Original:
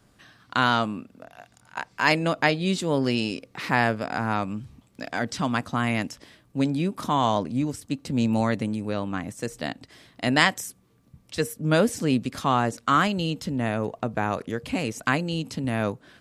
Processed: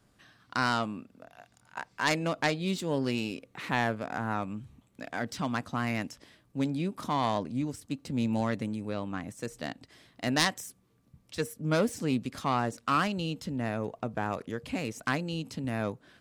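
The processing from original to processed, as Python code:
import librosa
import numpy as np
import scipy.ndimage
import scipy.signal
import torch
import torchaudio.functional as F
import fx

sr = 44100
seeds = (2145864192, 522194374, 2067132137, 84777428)

y = fx.self_delay(x, sr, depth_ms=0.13)
y = fx.peak_eq(y, sr, hz=5000.0, db=-8.0, octaves=0.29, at=(3.11, 5.18))
y = y * librosa.db_to_amplitude(-6.0)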